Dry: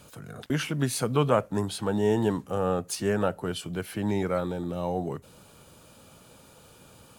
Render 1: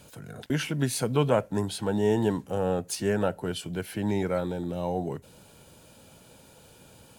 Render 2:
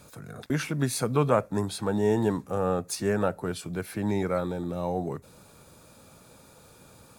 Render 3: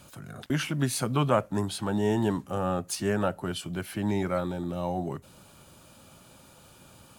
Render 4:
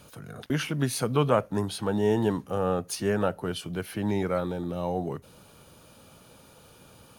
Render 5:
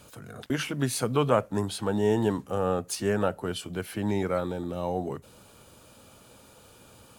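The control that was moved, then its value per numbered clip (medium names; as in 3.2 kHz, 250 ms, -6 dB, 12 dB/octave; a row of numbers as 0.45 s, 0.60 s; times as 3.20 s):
band-stop, frequency: 1.2 kHz, 3 kHz, 460 Hz, 7.6 kHz, 160 Hz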